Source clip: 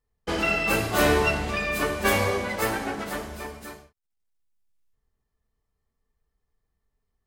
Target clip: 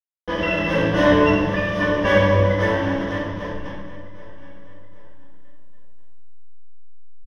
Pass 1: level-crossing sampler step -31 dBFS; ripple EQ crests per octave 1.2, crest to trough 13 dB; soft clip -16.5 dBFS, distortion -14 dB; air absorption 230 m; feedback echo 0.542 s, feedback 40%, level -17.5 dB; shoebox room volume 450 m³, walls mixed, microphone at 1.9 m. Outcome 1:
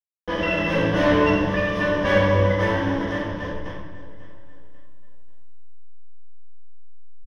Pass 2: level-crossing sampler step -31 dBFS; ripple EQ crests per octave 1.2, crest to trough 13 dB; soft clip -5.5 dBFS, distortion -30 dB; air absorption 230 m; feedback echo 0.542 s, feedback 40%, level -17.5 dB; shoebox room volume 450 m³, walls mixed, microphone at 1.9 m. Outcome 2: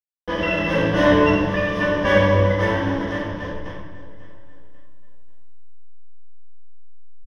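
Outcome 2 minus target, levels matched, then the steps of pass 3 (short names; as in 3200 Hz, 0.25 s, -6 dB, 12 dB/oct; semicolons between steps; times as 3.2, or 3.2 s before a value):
echo 0.234 s early
level-crossing sampler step -31 dBFS; ripple EQ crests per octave 1.2, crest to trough 13 dB; soft clip -5.5 dBFS, distortion -30 dB; air absorption 230 m; feedback echo 0.776 s, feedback 40%, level -17.5 dB; shoebox room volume 450 m³, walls mixed, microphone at 1.9 m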